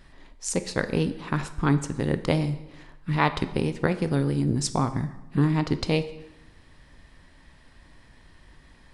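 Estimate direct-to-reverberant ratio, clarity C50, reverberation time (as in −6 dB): 10.5 dB, 13.5 dB, 1.0 s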